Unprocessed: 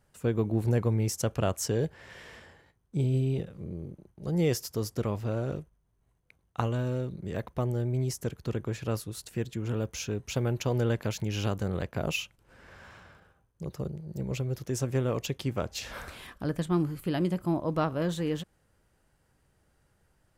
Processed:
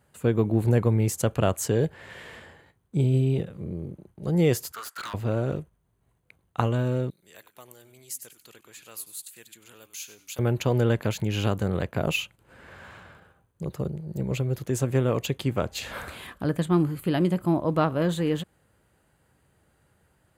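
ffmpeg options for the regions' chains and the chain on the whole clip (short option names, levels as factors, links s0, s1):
-filter_complex "[0:a]asettb=1/sr,asplit=3[s0][s1][s2];[s0]atrim=end=4.724[s3];[s1]atrim=start=4.72:end=5.14,asetpts=PTS-STARTPTS,afade=t=in:d=0.004:c=qsin,afade=t=out:st=0.416:d=0.004:c=qsin,highpass=f=1400:t=q:w=8.1,aeval=exprs='0.0178*(abs(mod(val(0)/0.0178+3,4)-2)-1)':c=same[s4];[s2]atrim=start=5.136[s5];[s3][s4]acrossfade=d=0.004:c1=hsin:c2=qsin[s6];[s6][s5]acrossfade=d=0.004:c1=qsin:c2=hsin,asettb=1/sr,asplit=3[s7][s8][s9];[s7]atrim=end=7.104[s10];[s8]atrim=start=7.1:end=10.39,asetpts=PTS-STARTPTS,afade=t=in:d=0.004:c=qsin,afade=t=out:st=3.286:d=0.004:c=qsin,aderivative,asplit=4[s11][s12][s13][s14];[s12]adelay=96,afreqshift=-130,volume=0.211[s15];[s13]adelay=192,afreqshift=-260,volume=0.0631[s16];[s14]adelay=288,afreqshift=-390,volume=0.0191[s17];[s11][s15][s16][s17]amix=inputs=4:normalize=0,atrim=end_sample=145089[s18];[s9]atrim=start=10.386[s19];[s10][s18]acrossfade=d=0.004:c1=hsin:c2=qsin[s20];[s20][s19]acrossfade=d=0.004:c1=qsin:c2=hsin,highpass=66,equalizer=f=5500:t=o:w=0.29:g=-11,volume=1.78"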